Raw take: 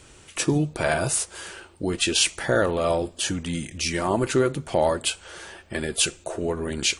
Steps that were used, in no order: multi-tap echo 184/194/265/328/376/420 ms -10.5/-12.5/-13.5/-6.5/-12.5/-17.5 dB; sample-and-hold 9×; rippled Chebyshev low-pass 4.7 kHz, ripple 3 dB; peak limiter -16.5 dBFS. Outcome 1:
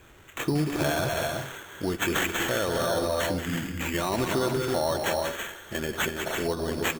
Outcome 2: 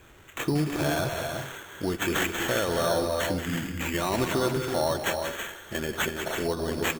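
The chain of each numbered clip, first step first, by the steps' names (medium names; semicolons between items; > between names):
rippled Chebyshev low-pass > sample-and-hold > multi-tap echo > peak limiter; rippled Chebyshev low-pass > peak limiter > sample-and-hold > multi-tap echo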